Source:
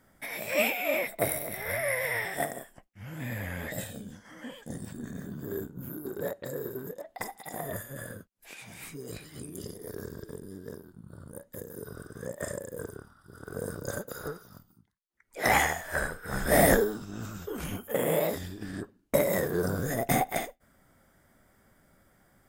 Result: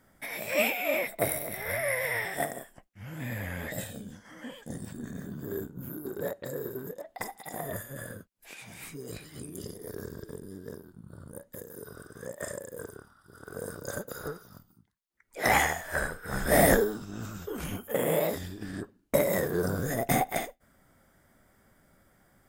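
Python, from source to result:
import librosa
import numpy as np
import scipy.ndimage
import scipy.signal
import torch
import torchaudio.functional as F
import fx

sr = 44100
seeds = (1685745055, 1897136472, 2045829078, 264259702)

y = fx.low_shelf(x, sr, hz=350.0, db=-6.0, at=(11.55, 13.96))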